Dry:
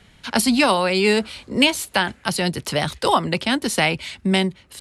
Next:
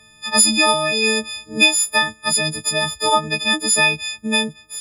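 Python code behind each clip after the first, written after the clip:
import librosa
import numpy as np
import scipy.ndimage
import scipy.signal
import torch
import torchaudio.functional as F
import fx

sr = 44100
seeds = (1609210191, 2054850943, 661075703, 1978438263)

y = fx.freq_snap(x, sr, grid_st=6)
y = y * 10.0 ** (-4.0 / 20.0)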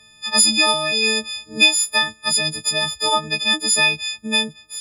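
y = fx.peak_eq(x, sr, hz=4400.0, db=6.5, octaves=1.6)
y = y * 10.0 ** (-4.0 / 20.0)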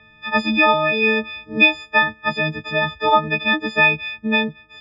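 y = scipy.signal.sosfilt(scipy.signal.butter(4, 2500.0, 'lowpass', fs=sr, output='sos'), x)
y = y * 10.0 ** (5.5 / 20.0)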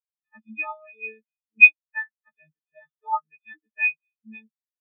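y = fx.spectral_expand(x, sr, expansion=4.0)
y = y * 10.0 ** (1.0 / 20.0)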